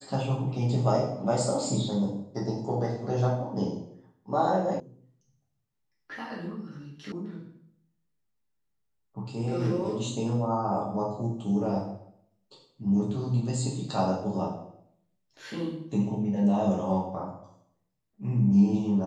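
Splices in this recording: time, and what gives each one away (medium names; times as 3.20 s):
4.80 s: sound stops dead
7.12 s: sound stops dead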